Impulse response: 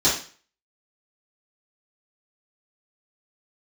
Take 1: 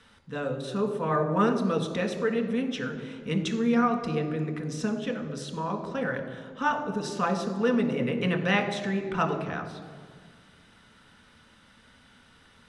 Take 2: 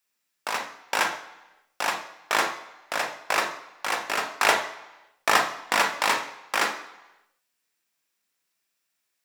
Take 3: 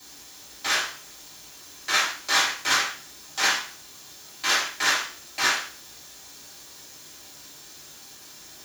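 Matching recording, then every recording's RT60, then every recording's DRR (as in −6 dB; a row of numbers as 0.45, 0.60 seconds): 3; 1.9, 1.0, 0.40 seconds; 3.5, 5.0, −11.0 decibels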